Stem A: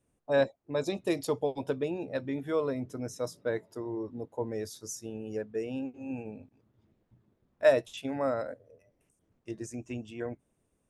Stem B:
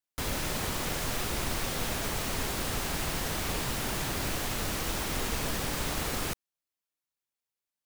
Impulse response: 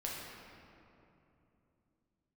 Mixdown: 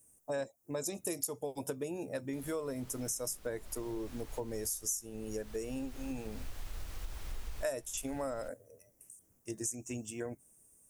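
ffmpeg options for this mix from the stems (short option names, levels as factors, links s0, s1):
-filter_complex "[0:a]aexciter=amount=8.4:drive=7.9:freq=5900,volume=0.891,asplit=2[s0][s1];[1:a]asubboost=boost=10.5:cutoff=60,adelay=2150,volume=0.133[s2];[s1]apad=whole_len=441370[s3];[s2][s3]sidechaincompress=threshold=0.0126:ratio=3:attack=31:release=634[s4];[s0][s4]amix=inputs=2:normalize=0,acompressor=threshold=0.0178:ratio=4"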